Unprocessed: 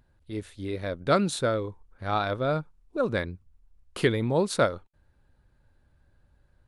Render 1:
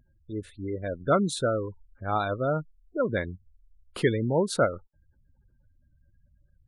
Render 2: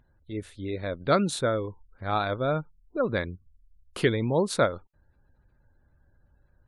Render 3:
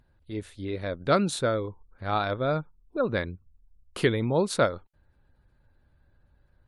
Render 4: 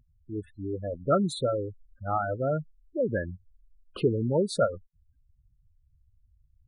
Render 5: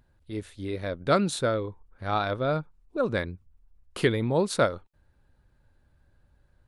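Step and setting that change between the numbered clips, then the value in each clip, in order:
gate on every frequency bin, under each frame's peak: −20, −35, −45, −10, −60 decibels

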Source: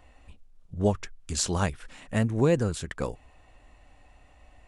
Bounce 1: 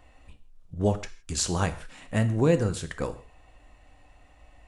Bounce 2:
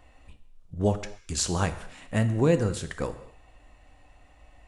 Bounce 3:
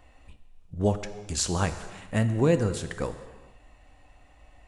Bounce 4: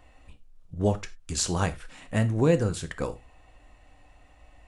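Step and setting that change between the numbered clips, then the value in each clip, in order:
reverb whose tail is shaped and stops, gate: 190, 280, 490, 120 milliseconds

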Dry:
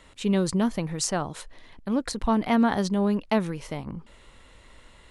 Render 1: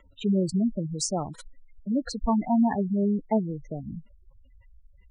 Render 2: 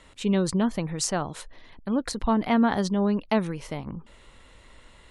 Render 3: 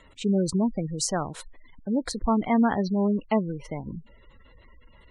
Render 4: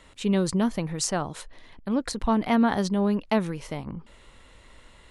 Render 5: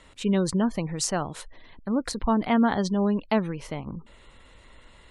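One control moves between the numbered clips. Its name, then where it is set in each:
gate on every frequency bin, under each frame's peak: −10, −45, −20, −60, −35 decibels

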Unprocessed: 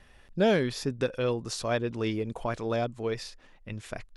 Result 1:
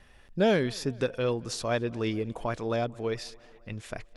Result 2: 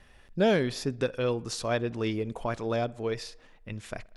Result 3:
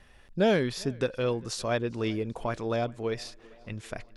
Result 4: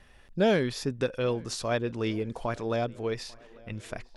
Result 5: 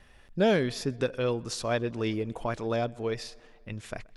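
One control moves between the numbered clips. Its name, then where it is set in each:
tape delay, delay time: 222, 60, 398, 847, 126 milliseconds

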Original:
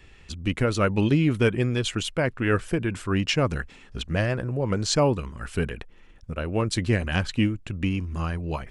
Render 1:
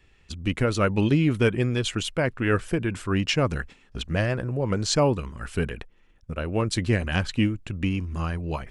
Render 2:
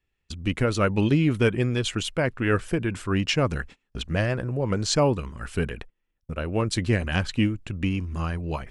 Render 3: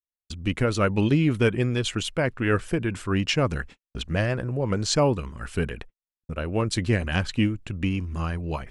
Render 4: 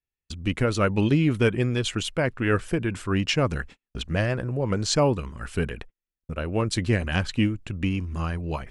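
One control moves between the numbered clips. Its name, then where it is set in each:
noise gate, range: −8, −27, −59, −43 decibels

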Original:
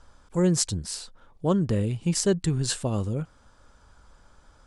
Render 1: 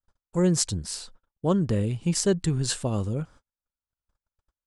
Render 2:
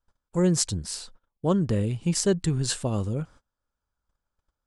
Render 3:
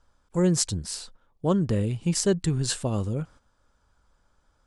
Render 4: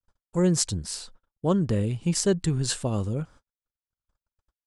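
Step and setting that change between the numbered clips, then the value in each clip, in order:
noise gate, range: −45, −29, −11, −60 decibels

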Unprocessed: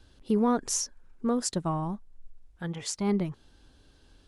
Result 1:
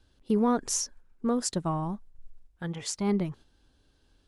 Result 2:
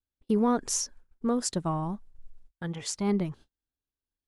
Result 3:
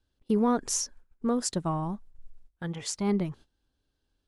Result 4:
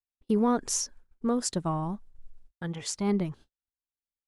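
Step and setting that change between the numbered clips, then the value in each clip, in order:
noise gate, range: −7, −37, −19, −51 decibels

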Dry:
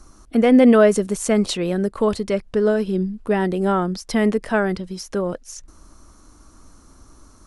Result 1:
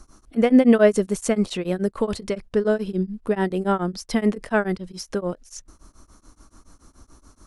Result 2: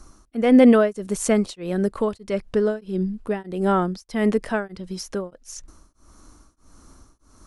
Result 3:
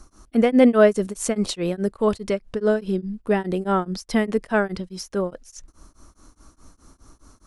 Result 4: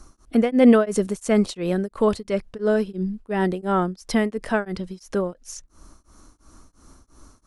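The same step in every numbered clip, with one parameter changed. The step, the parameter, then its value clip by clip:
tremolo along a rectified sine, nulls at: 7, 1.6, 4.8, 2.9 Hertz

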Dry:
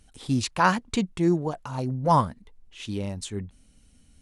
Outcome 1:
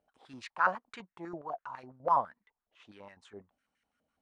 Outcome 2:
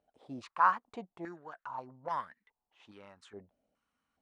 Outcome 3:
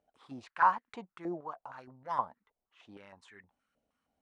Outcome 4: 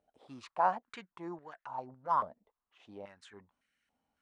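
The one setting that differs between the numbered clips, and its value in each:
band-pass on a step sequencer, speed: 12, 2.4, 6.4, 3.6 Hertz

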